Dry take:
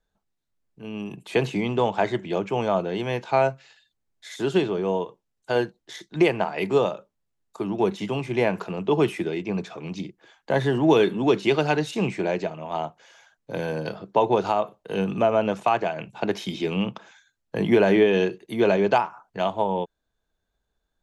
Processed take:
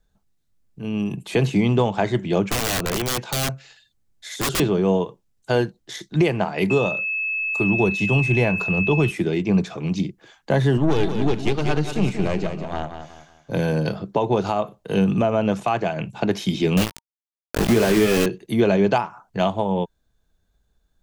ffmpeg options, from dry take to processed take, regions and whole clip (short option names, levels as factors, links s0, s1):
-filter_complex "[0:a]asettb=1/sr,asplit=3[s0][s1][s2];[s0]atrim=end=2.504[s3];[s1]atrim=start=2.5:end=4.6,asetpts=PTS-STARTPTS,afade=t=in:d=0.004:c=qsin,afade=t=out:st=2.096:d=0.004:c=qsin,acrossover=split=120|320[s4][s5][s6];[s4]acompressor=threshold=0.00708:ratio=4[s7];[s5]acompressor=threshold=0.01:ratio=4[s8];[s6]acompressor=threshold=0.0794:ratio=4[s9];[s7][s8][s9]amix=inputs=3:normalize=0,aeval=exprs='(mod(14.1*val(0)+1,2)-1)/14.1':c=same[s10];[s2]atrim=start=4.596[s11];[s3][s10]acrossfade=d=0.004:c1=hsin:c2=qsin[s12];[s12][s11]acrossfade=d=0.004:c1=qsin:c2=hsin,asettb=1/sr,asplit=3[s13][s14][s15];[s13]atrim=end=6.704[s16];[s14]atrim=start=6.7:end=9.11,asetpts=PTS-STARTPTS,afade=t=in:d=0.004:c=qsin,afade=t=out:st=2.406:d=0.004:c=qsin,asubboost=boost=4.5:cutoff=120,aeval=exprs='val(0)+0.0501*sin(2*PI*2600*n/s)':c=same[s17];[s15]atrim=start=9.106[s18];[s16][s17]acrossfade=d=0.004:c1=hsin:c2=qsin[s19];[s19][s18]acrossfade=d=0.004:c1=qsin:c2=hsin,asettb=1/sr,asplit=3[s20][s21][s22];[s20]atrim=end=10.774[s23];[s21]atrim=start=10.77:end=13.52,asetpts=PTS-STARTPTS,afade=t=in:d=0.004:c=qsin,afade=t=out:st=2.746:d=0.004:c=qsin,aeval=exprs='(tanh(6.31*val(0)+0.8)-tanh(0.8))/6.31':c=same,aecho=1:1:185|370|555|740:0.376|0.132|0.046|0.0161,atrim=end_sample=121275[s24];[s22]atrim=start=13.516[s25];[s23][s24]acrossfade=d=0.004:c1=hsin:c2=qsin[s26];[s26][s25]acrossfade=d=0.004:c1=qsin:c2=hsin,asettb=1/sr,asplit=3[s27][s28][s29];[s27]atrim=end=16.774[s30];[s28]atrim=start=16.77:end=18.26,asetpts=PTS-STARTPTS,afade=t=in:d=0.004:c=qsin,afade=t=out:st=1.486:d=0.004:c=qsin,aeval=exprs='val(0)*gte(abs(val(0)),0.0841)':c=same,asplit=2[s31][s32];[s32]adelay=18,volume=0.447[s33];[s31][s33]amix=inputs=2:normalize=0,atrim=end_sample=65709[s34];[s29]atrim=start=18.256[s35];[s30][s34]acrossfade=d=0.004:c1=hsin:c2=qsin[s36];[s36][s35]acrossfade=d=0.004:c1=qsin:c2=hsin,bass=f=250:g=9,treble=f=4000:g=4,bandreject=f=930:w=25,alimiter=limit=0.251:level=0:latency=1:release=321,volume=1.5"